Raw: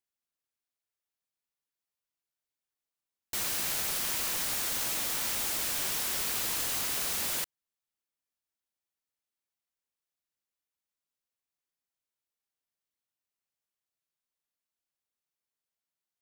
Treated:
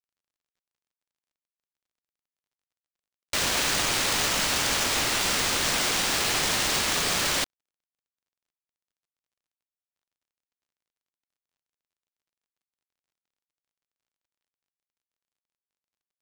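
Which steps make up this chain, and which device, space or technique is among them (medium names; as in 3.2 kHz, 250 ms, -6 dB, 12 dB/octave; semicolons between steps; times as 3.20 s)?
early companding sampler (sample-rate reducer 13 kHz, jitter 0%; companded quantiser 8-bit); trim +6.5 dB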